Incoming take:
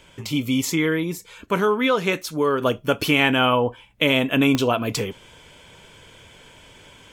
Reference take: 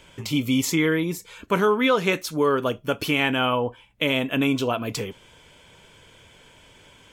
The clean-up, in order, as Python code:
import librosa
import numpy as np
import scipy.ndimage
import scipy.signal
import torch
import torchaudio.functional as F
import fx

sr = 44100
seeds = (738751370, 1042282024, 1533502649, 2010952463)

y = fx.fix_declick_ar(x, sr, threshold=10.0)
y = fx.fix_level(y, sr, at_s=2.61, step_db=-4.0)